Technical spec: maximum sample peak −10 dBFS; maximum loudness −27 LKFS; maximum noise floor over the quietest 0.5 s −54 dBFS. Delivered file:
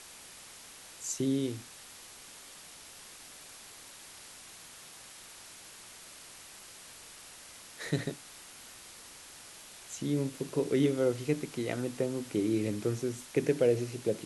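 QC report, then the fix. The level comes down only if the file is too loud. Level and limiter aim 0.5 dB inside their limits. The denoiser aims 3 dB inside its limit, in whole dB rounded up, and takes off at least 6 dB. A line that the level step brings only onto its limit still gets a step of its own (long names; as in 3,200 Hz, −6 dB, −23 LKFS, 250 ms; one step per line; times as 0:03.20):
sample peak −15.5 dBFS: in spec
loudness −32.0 LKFS: in spec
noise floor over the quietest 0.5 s −51 dBFS: out of spec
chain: broadband denoise 6 dB, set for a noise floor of −51 dBFS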